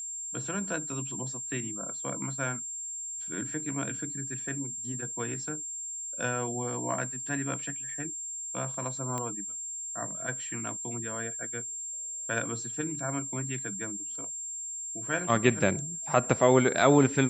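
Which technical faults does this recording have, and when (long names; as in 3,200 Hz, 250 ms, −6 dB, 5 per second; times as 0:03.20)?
whistle 7,400 Hz −35 dBFS
0:09.18: click −20 dBFS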